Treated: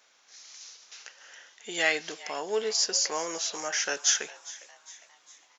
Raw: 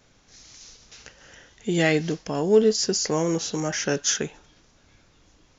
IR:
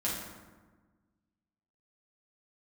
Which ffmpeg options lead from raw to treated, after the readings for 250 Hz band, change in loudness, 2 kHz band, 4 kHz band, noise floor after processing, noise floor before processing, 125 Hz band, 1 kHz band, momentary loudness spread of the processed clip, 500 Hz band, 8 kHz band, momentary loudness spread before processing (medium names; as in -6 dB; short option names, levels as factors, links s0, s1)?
-18.5 dB, -4.0 dB, 0.0 dB, 0.0 dB, -63 dBFS, -60 dBFS, -28.0 dB, -2.5 dB, 21 LU, -10.5 dB, no reading, 9 LU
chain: -filter_complex "[0:a]highpass=830,asplit=2[s0][s1];[s1]asplit=4[s2][s3][s4][s5];[s2]adelay=406,afreqshift=110,volume=0.119[s6];[s3]adelay=812,afreqshift=220,volume=0.061[s7];[s4]adelay=1218,afreqshift=330,volume=0.0309[s8];[s5]adelay=1624,afreqshift=440,volume=0.0158[s9];[s6][s7][s8][s9]amix=inputs=4:normalize=0[s10];[s0][s10]amix=inputs=2:normalize=0"